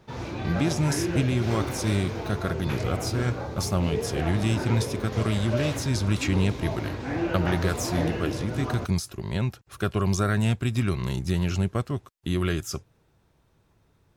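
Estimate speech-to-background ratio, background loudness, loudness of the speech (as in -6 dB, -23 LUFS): 4.0 dB, -31.5 LUFS, -27.5 LUFS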